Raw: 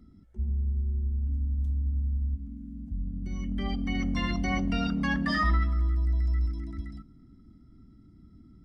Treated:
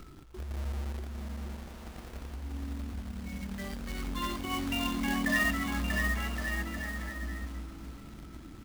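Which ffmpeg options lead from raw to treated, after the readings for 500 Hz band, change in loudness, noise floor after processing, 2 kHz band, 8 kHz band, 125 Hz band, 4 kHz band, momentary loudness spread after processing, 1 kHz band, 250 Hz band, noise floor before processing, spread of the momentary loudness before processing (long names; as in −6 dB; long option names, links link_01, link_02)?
+0.5 dB, −4.5 dB, −48 dBFS, +3.0 dB, can't be measured, −9.0 dB, +1.5 dB, 16 LU, −2.5 dB, −3.5 dB, −55 dBFS, 12 LU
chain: -filter_complex "[0:a]afftfilt=real='re*pow(10,19/40*sin(2*PI*(0.61*log(max(b,1)*sr/1024/100)/log(2)-(-0.49)*(pts-256)/sr)))':imag='im*pow(10,19/40*sin(2*PI*(0.61*log(max(b,1)*sr/1024/100)/log(2)-(-0.49)*(pts-256)/sr)))':win_size=1024:overlap=0.75,lowpass=frequency=3600:width=0.5412,lowpass=frequency=3600:width=1.3066,lowshelf=frequency=300:gain=-9,acrusher=bits=2:mode=log:mix=0:aa=0.000001,acompressor=mode=upward:threshold=-32dB:ratio=2.5,asplit=2[link_01][link_02];[link_02]aecho=0:1:640|1120|1480|1750|1952:0.631|0.398|0.251|0.158|0.1[link_03];[link_01][link_03]amix=inputs=2:normalize=0,volume=-5dB"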